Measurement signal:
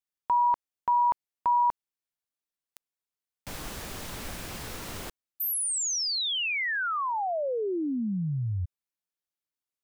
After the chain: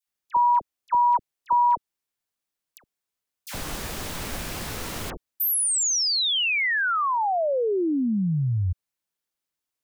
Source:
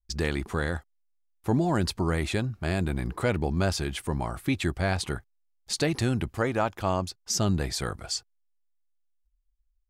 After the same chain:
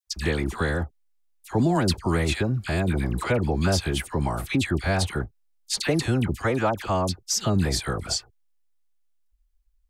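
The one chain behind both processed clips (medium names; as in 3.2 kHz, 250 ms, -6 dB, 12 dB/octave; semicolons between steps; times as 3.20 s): in parallel at -0.5 dB: peak limiter -24 dBFS; on the sum: phase dispersion lows, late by 72 ms, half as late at 1.4 kHz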